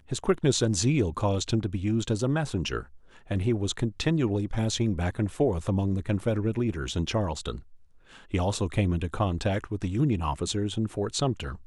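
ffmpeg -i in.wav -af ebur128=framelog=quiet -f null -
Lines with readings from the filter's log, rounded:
Integrated loudness:
  I:         -27.9 LUFS
  Threshold: -38.1 LUFS
Loudness range:
  LRA:         2.3 LU
  Threshold: -48.5 LUFS
  LRA low:   -29.7 LUFS
  LRA high:  -27.4 LUFS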